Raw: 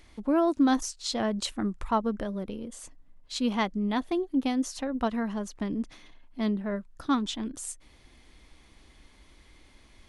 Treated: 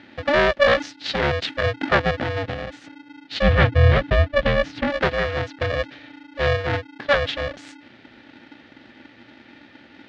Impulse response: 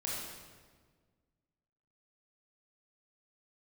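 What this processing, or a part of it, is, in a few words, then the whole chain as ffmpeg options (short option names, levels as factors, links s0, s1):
ring modulator pedal into a guitar cabinet: -filter_complex "[0:a]aeval=exprs='val(0)*sgn(sin(2*PI*290*n/s))':c=same,highpass=87,equalizer=f=120:t=q:w=4:g=7,equalizer=f=330:t=q:w=4:g=-4,equalizer=f=1000:t=q:w=4:g=-8,equalizer=f=1800:t=q:w=4:g=6,lowpass=f=4000:w=0.5412,lowpass=f=4000:w=1.3066,asettb=1/sr,asplit=3[s0][s1][s2];[s0]atrim=end=3.424[s3];[s1]atrim=start=3.42:end=4.9,asetpts=PTS-STARTPTS,afade=t=in:d=0.004:c=qsin,afade=t=out:st=1.476:d=0.004:c=qsin,bass=f=250:g=12,treble=f=4000:g=-6[s4];[s2]atrim=start=4.896[s5];[s3][s4]acrossfade=d=0.004:c1=hsin:c2=qsin[s6];[s6][s5]acrossfade=d=0.004:c1=qsin:c2=hsin,volume=2.66"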